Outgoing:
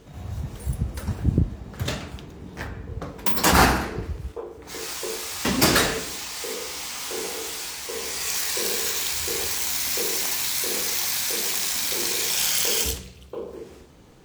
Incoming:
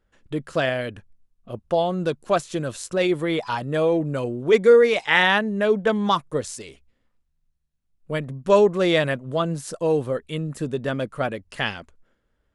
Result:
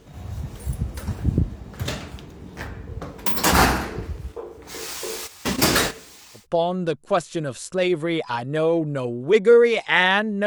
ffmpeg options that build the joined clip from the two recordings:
-filter_complex "[0:a]asplit=3[a][b][c];[a]afade=t=out:st=5.26:d=0.02[d];[b]agate=range=-13dB:threshold=-25dB:ratio=16:release=100:detection=peak,afade=t=in:st=5.26:d=0.02,afade=t=out:st=6.47:d=0.02[e];[c]afade=t=in:st=6.47:d=0.02[f];[d][e][f]amix=inputs=3:normalize=0,apad=whole_dur=10.46,atrim=end=10.46,atrim=end=6.47,asetpts=PTS-STARTPTS[g];[1:a]atrim=start=1.52:end=5.65,asetpts=PTS-STARTPTS[h];[g][h]acrossfade=d=0.14:c1=tri:c2=tri"

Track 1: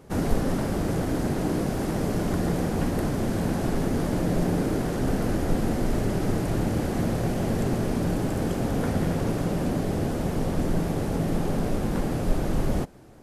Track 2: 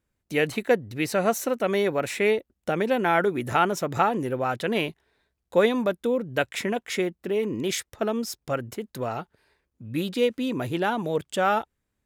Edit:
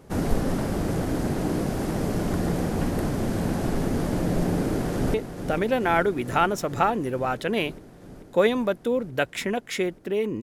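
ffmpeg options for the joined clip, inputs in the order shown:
-filter_complex "[0:a]apad=whole_dur=10.42,atrim=end=10.42,atrim=end=5.142[a];[1:a]atrim=start=2.328:end=7.61[b];[a][b]acrossfade=d=0.004:c1=hsin:c2=hsin,asplit=2[c][d];[d]afade=t=in:st=4.49:d=0.01,afade=t=out:st=5.14:d=0.01,aecho=0:1:440|880|1320|1760|2200|2640|3080|3520|3960|4400|4840|5280:0.334965|0.267972|0.214378|0.171502|0.137202|0.109761|0.0878092|0.0702473|0.0561979|0.0449583|0.0359666|0.0287733[e];[c][e]amix=inputs=2:normalize=0"

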